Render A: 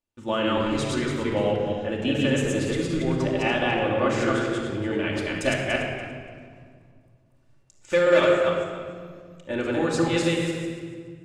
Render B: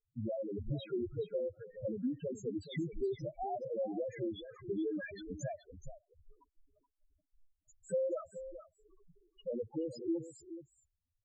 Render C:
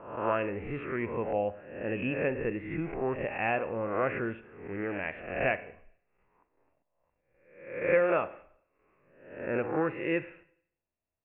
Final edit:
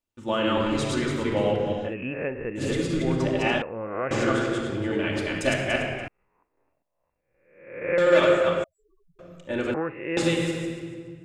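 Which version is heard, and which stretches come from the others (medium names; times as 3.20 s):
A
1.90–2.60 s: from C, crossfade 0.10 s
3.62–4.11 s: from C
6.08–7.98 s: from C
8.64–9.19 s: from B
9.74–10.17 s: from C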